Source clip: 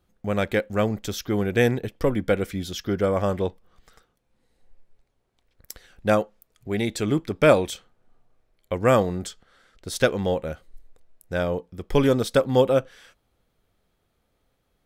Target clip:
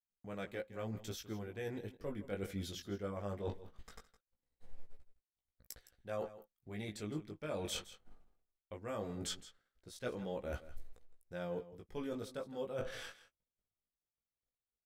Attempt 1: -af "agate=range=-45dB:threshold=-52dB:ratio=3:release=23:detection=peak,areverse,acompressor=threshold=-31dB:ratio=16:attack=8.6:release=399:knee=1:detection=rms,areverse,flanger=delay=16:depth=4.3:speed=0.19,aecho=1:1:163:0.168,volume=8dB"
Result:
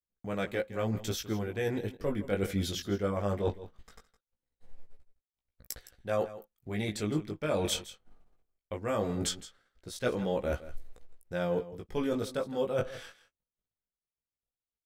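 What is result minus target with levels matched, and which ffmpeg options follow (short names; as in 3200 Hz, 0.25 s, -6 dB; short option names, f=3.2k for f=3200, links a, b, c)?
compressor: peak gain reduction -10.5 dB
-af "agate=range=-45dB:threshold=-52dB:ratio=3:release=23:detection=peak,areverse,acompressor=threshold=-42dB:ratio=16:attack=8.6:release=399:knee=1:detection=rms,areverse,flanger=delay=16:depth=4.3:speed=0.19,aecho=1:1:163:0.168,volume=8dB"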